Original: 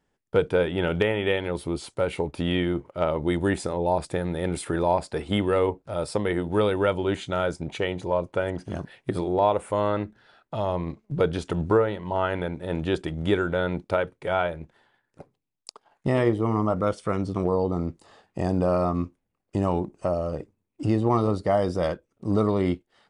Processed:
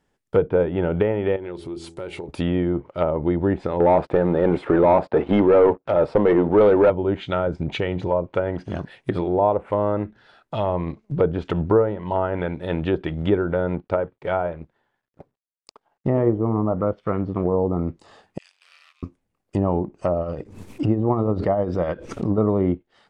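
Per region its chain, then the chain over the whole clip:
1.36–2.29 bell 360 Hz +12.5 dB 0.2 oct + de-hum 83.11 Hz, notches 10 + compressor 2.5:1, threshold -38 dBFS
3.8–6.9 HPF 340 Hz 6 dB/oct + sample leveller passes 3
7.47–8.08 low shelf 360 Hz +7 dB + compressor 2:1, threshold -25 dBFS + mismatched tape noise reduction encoder only
13.75–17.54 G.711 law mismatch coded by A + LPF 1600 Hz 6 dB/oct
18.38–19.03 half-wave gain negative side -7 dB + ladder high-pass 2300 Hz, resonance 45% + ring modulator 74 Hz
20.21–22.38 tremolo 10 Hz, depth 55% + backwards sustainer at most 68 dB/s
whole clip: dynamic EQ 3000 Hz, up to +6 dB, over -45 dBFS, Q 0.88; treble ducked by the level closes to 870 Hz, closed at -20 dBFS; gain +3.5 dB

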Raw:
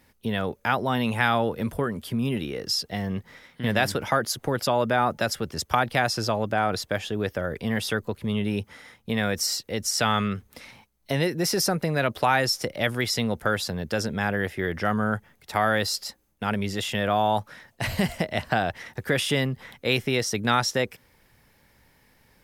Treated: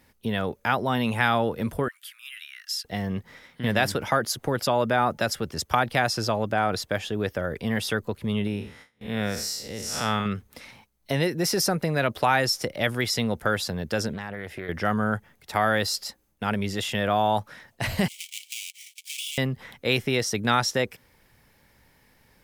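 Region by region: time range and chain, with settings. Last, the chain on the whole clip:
1.88–2.85 steep high-pass 1400 Hz 48 dB/oct + bell 4900 Hz -5 dB 0.98 oct
8.47–10.26 time blur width 0.164 s + gate with hold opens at -36 dBFS, closes at -43 dBFS
14.13–14.69 compressor, threshold -30 dBFS + Doppler distortion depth 0.22 ms
18.08–19.38 half-waves squared off + rippled Chebyshev high-pass 2200 Hz, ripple 6 dB + compressor 2.5:1, threshold -32 dBFS
whole clip: dry

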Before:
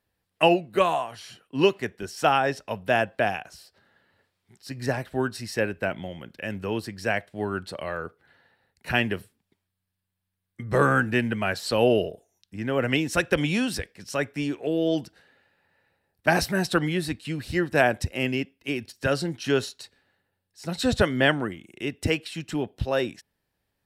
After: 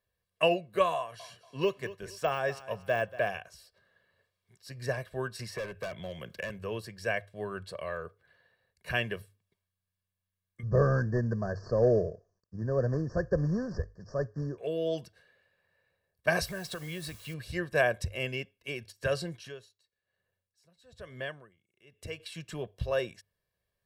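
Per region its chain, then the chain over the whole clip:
0.96–3.38 de-esser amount 85% + feedback echo 0.235 s, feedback 32%, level -16.5 dB
5.39–6.5 overloaded stage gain 27.5 dB + three-band squash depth 100%
10.63–14.58 CVSD 32 kbps + Chebyshev band-stop 1800–4600 Hz, order 5 + tilt shelf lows +8.5 dB, about 680 Hz
16.47–17.34 compressor 10:1, threshold -26 dBFS + requantised 8-bit, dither triangular
19.4–22.2 compressor 1.5:1, threshold -45 dBFS + dB-linear tremolo 1.1 Hz, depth 22 dB
whole clip: notches 50/100 Hz; comb 1.8 ms, depth 70%; gain -8 dB

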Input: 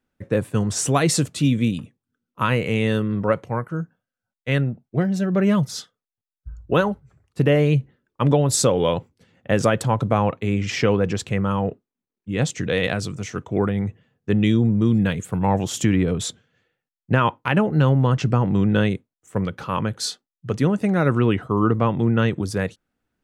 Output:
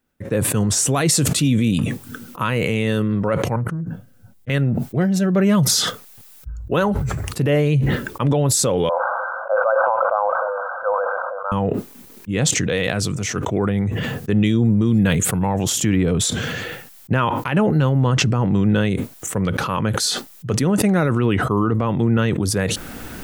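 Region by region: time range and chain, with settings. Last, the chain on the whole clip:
3.56–4.5 EQ curve 120 Hz 0 dB, 210 Hz -5 dB, 1300 Hz -20 dB + Doppler distortion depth 0.49 ms
8.89–11.52 switching spikes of -18 dBFS + brick-wall FIR band-pass 500–1600 Hz + sustainer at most 26 dB/s
whole clip: high shelf 9500 Hz +10.5 dB; limiter -12.5 dBFS; sustainer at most 22 dB/s; gain +3 dB

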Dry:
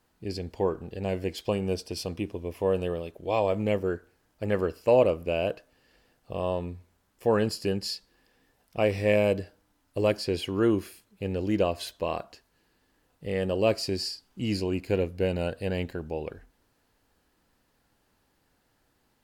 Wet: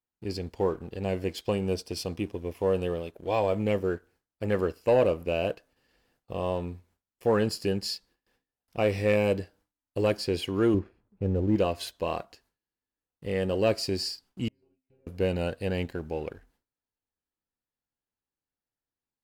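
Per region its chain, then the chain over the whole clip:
10.74–11.56 LPF 1100 Hz + low shelf 160 Hz +8.5 dB
14.48–15.07 compressor 5:1, threshold -41 dBFS + tape spacing loss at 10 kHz 44 dB + metallic resonator 130 Hz, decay 0.57 s, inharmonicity 0.002
whole clip: gate with hold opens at -54 dBFS; notch 620 Hz, Q 20; sample leveller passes 1; gain -3.5 dB

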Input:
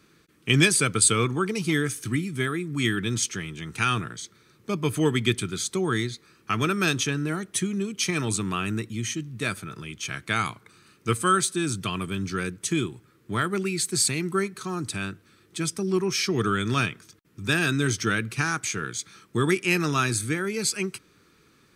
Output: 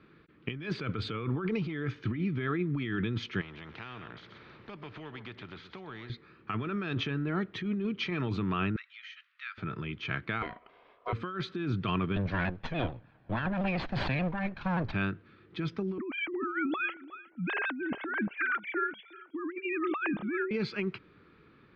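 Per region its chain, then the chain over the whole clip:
3.41–6.1 echo 0.125 s -18.5 dB + compressor 2.5:1, threshold -43 dBFS + spectral compressor 2:1
8.76–9.58 steep high-pass 1300 Hz + compressor 2:1, threshold -42 dBFS
10.42–11.13 compressor 2:1, threshold -32 dBFS + ring modulator 850 Hz + air absorption 110 m
12.16–14.93 minimum comb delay 1.2 ms + shaped vibrato saw down 6.9 Hz, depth 100 cents
15.98–20.51 sine-wave speech + feedback echo 0.362 s, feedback 15%, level -21.5 dB
whole clip: Bessel low-pass 2200 Hz, order 8; negative-ratio compressor -30 dBFS, ratio -1; gain -2 dB

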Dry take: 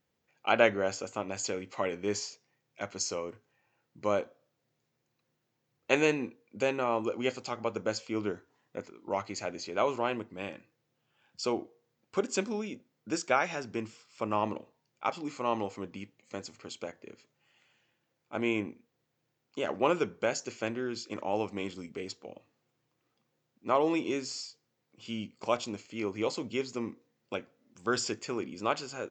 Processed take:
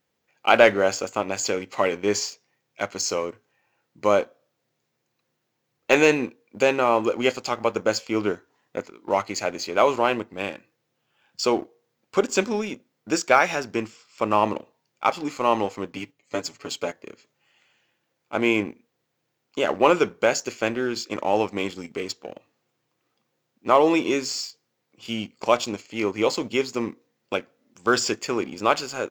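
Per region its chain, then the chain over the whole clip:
15.92–16.93 gate -59 dBFS, range -7 dB + comb 7 ms, depth 82%
whole clip: de-esser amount 70%; low shelf 210 Hz -7 dB; sample leveller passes 1; gain +7 dB

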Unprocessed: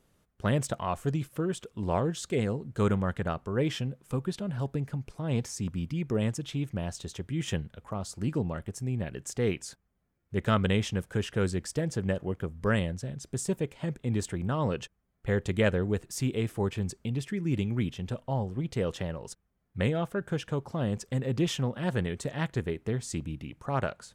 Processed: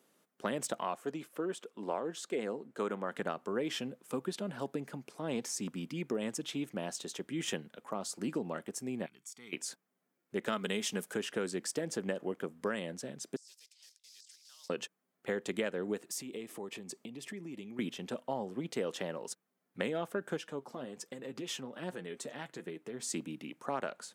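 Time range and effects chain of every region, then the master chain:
0.95–3.12 HPF 370 Hz 6 dB/oct + high shelf 2400 Hz -8 dB
9.06–9.53 passive tone stack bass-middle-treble 5-5-5 + comb 0.9 ms, depth 68% + compressor 1.5:1, threshold -54 dBFS
10.52–11.14 high shelf 4800 Hz +9.5 dB + comb 4.8 ms, depth 39%
13.36–14.7 block floating point 5-bit + ladder band-pass 5600 Hz, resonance 60% + negative-ratio compressor -56 dBFS
16.1–17.79 notch 1500 Hz, Q 5.3 + compressor 8:1, threshold -36 dBFS
20.37–23 compressor 5:1, threshold -30 dBFS + flange 1.3 Hz, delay 5.4 ms, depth 3.2 ms, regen +45%
whole clip: HPF 220 Hz 24 dB/oct; high shelf 8400 Hz +4 dB; compressor 10:1, threshold -30 dBFS

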